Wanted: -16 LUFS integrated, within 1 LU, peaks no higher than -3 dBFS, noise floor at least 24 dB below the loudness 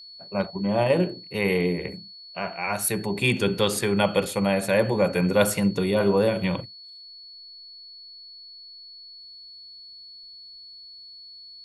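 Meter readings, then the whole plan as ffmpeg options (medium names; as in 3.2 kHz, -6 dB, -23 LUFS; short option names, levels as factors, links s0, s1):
steady tone 4.4 kHz; tone level -42 dBFS; loudness -24.0 LUFS; peak level -6.0 dBFS; loudness target -16.0 LUFS
-> -af "bandreject=f=4400:w=30"
-af "volume=2.51,alimiter=limit=0.708:level=0:latency=1"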